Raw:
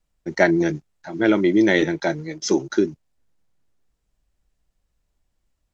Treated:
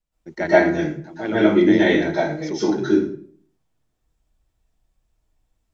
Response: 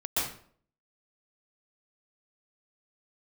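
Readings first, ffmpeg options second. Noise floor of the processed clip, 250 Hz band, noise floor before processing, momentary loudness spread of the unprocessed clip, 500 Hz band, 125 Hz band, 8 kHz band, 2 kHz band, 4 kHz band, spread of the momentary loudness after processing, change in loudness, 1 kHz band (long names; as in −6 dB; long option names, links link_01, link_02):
−74 dBFS, +2.0 dB, −74 dBFS, 12 LU, +2.5 dB, +1.0 dB, can't be measured, +0.5 dB, 0.0 dB, 14 LU, +1.5 dB, +3.5 dB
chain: -filter_complex "[0:a]acrossover=split=5200[link_01][link_02];[link_02]acompressor=threshold=-53dB:ratio=4:attack=1:release=60[link_03];[link_01][link_03]amix=inputs=2:normalize=0[link_04];[1:a]atrim=start_sample=2205[link_05];[link_04][link_05]afir=irnorm=-1:irlink=0,volume=-6.5dB"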